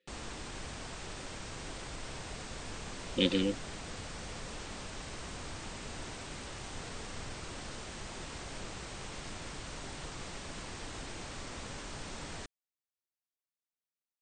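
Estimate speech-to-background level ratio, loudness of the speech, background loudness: 12.0 dB, -31.5 LUFS, -43.5 LUFS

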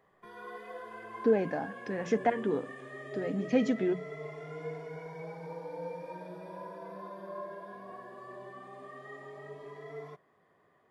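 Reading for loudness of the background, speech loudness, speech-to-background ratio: -44.0 LUFS, -31.5 LUFS, 12.5 dB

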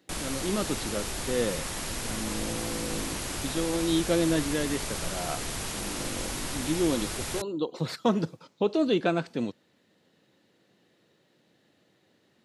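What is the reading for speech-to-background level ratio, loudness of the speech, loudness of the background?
2.0 dB, -31.0 LUFS, -33.0 LUFS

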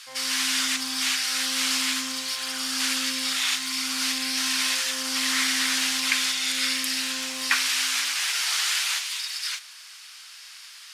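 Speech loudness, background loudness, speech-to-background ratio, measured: -23.5 LUFS, -39.5 LUFS, 16.0 dB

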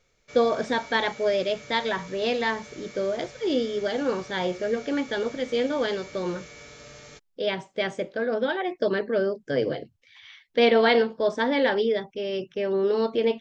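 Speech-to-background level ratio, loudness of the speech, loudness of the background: 18.5 dB, -26.0 LUFS, -44.5 LUFS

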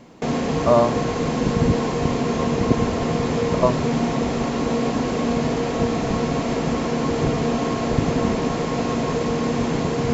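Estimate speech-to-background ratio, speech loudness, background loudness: 1.0 dB, -21.0 LUFS, -22.0 LUFS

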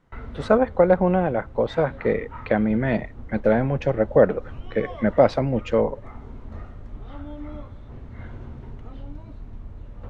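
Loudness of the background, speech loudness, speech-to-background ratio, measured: -41.0 LUFS, -22.0 LUFS, 19.0 dB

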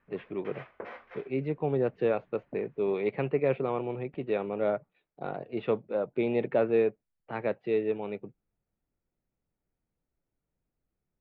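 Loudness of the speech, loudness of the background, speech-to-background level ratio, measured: -31.0 LUFS, -47.5 LUFS, 16.5 dB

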